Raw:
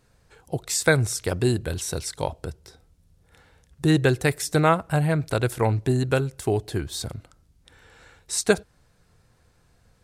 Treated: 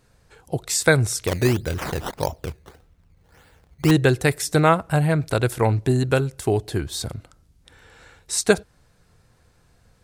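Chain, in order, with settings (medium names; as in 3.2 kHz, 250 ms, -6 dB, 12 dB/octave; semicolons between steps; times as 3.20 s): 1.27–3.91 s: decimation with a swept rate 14×, swing 100% 1.7 Hz; trim +2.5 dB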